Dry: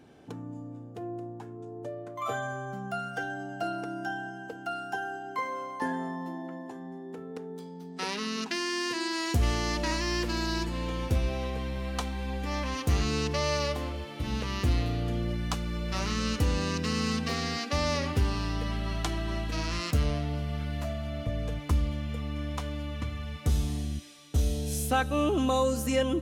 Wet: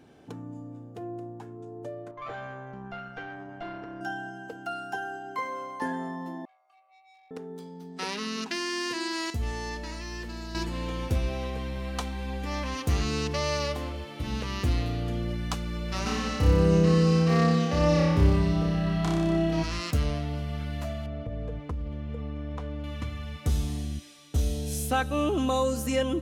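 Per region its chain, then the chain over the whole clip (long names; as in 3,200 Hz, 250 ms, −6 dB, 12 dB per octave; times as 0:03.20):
0:02.11–0:04.01: tube saturation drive 31 dB, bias 0.7 + high-frequency loss of the air 200 metres
0:06.45–0:07.31: stiff-string resonator 380 Hz, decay 0.47 s, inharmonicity 0.03 + frequency shifter +370 Hz + saturating transformer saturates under 2,400 Hz
0:09.30–0:10.55: low-shelf EQ 140 Hz +8 dB + tuned comb filter 220 Hz, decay 0.22 s, mix 80%
0:16.05–0:19.62: high-shelf EQ 2,100 Hz −9 dB + steady tone 780 Hz −44 dBFS + flutter between parallel walls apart 5.2 metres, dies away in 1.1 s
0:21.06–0:22.84: low-pass filter 1,100 Hz 6 dB per octave + parametric band 460 Hz +8.5 dB 0.24 octaves + downward compressor, threshold −29 dBFS
whole clip: no processing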